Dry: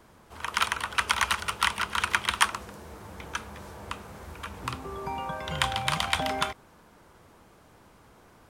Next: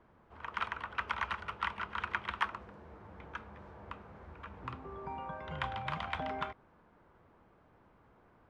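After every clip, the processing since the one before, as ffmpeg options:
-af "lowpass=2000,volume=0.398"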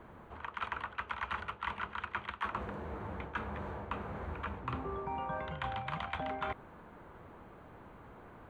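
-af "equalizer=f=5200:t=o:w=0.24:g=-14,areverse,acompressor=threshold=0.00562:ratio=16,areverse,volume=3.55"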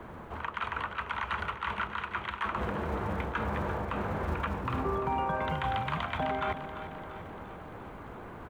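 -filter_complex "[0:a]acrossover=split=140[s0][s1];[s0]acrusher=bits=5:mode=log:mix=0:aa=0.000001[s2];[s2][s1]amix=inputs=2:normalize=0,alimiter=level_in=2:limit=0.0631:level=0:latency=1:release=73,volume=0.501,aecho=1:1:344|688|1032|1376|1720|2064|2408:0.266|0.157|0.0926|0.0546|0.0322|0.019|0.0112,volume=2.66"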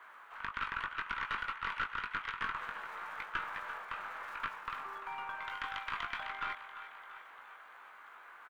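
-filter_complex "[0:a]highpass=f=1400:t=q:w=1.6,asplit=2[s0][s1];[s1]adelay=20,volume=0.531[s2];[s0][s2]amix=inputs=2:normalize=0,aeval=exprs='(tanh(7.94*val(0)+0.6)-tanh(0.6))/7.94':c=same,volume=0.668"

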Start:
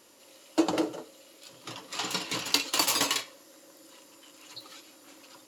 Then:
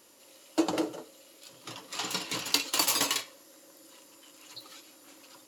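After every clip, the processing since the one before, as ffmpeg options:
-af "highshelf=f=9800:g=6,volume=0.794"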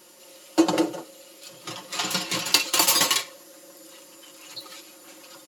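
-af "aecho=1:1:5.6:0.65,volume=1.88"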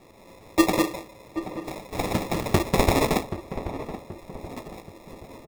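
-filter_complex "[0:a]acrusher=samples=29:mix=1:aa=0.000001,asplit=2[s0][s1];[s1]adelay=779,lowpass=f=1300:p=1,volume=0.282,asplit=2[s2][s3];[s3]adelay=779,lowpass=f=1300:p=1,volume=0.47,asplit=2[s4][s5];[s5]adelay=779,lowpass=f=1300:p=1,volume=0.47,asplit=2[s6][s7];[s7]adelay=779,lowpass=f=1300:p=1,volume=0.47,asplit=2[s8][s9];[s9]adelay=779,lowpass=f=1300:p=1,volume=0.47[s10];[s0][s2][s4][s6][s8][s10]amix=inputs=6:normalize=0"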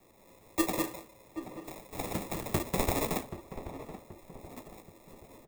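-filter_complex "[0:a]flanger=delay=0.8:depth=7.9:regen=83:speed=1.7:shape=triangular,acrossover=split=320|730|3400[s0][s1][s2][s3];[s3]aexciter=amount=2.8:drive=2.5:freq=7000[s4];[s0][s1][s2][s4]amix=inputs=4:normalize=0,volume=0.531"

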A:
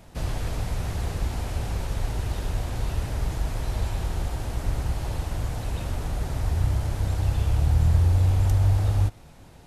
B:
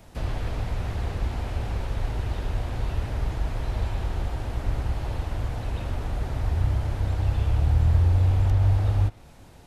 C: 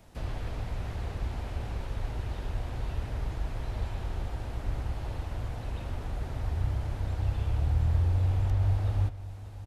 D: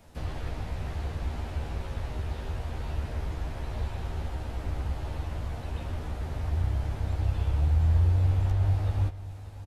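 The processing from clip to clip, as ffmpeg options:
-filter_complex "[0:a]equalizer=f=160:w=7.5:g=-5.5,acrossover=split=480|4200[s0][s1][s2];[s2]acompressor=threshold=0.00126:ratio=6[s3];[s0][s1][s3]amix=inputs=3:normalize=0"
-af "aecho=1:1:583:0.178,volume=0.501"
-filter_complex "[0:a]asplit=2[s0][s1];[s1]adelay=13,volume=0.631[s2];[s0][s2]amix=inputs=2:normalize=0"

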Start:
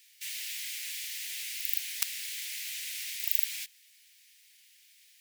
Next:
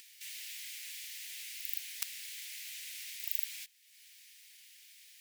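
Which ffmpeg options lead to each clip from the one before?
-af "acompressor=mode=upward:threshold=0.01:ratio=2.5,volume=0.447"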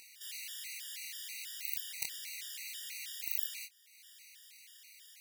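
-af "flanger=delay=22.5:depth=5.3:speed=2.1,afftfilt=real='re*gt(sin(2*PI*3.1*pts/sr)*(1-2*mod(floor(b*sr/1024/950),2)),0)':imag='im*gt(sin(2*PI*3.1*pts/sr)*(1-2*mod(floor(b*sr/1024/950),2)),0)':win_size=1024:overlap=0.75,volume=2.24"

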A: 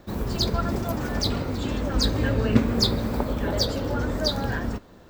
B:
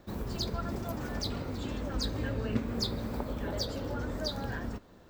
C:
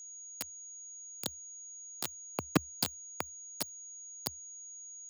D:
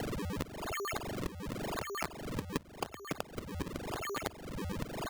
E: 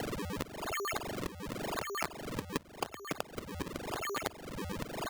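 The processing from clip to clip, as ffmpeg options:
-af "acompressor=threshold=0.0355:ratio=1.5,volume=0.473"
-af "acrusher=bits=3:mix=0:aa=0.000001,afreqshift=71,aeval=exprs='val(0)+0.00447*sin(2*PI*6700*n/s)':c=same,volume=1.19"
-af "aecho=1:1:554|1108|1662:0.335|0.0971|0.0282,acrusher=samples=36:mix=1:aa=0.000001:lfo=1:lforange=57.6:lforate=0.91,acompressor=threshold=0.00447:ratio=8,volume=4.22"
-af "lowshelf=f=230:g=-6,volume=1.26"

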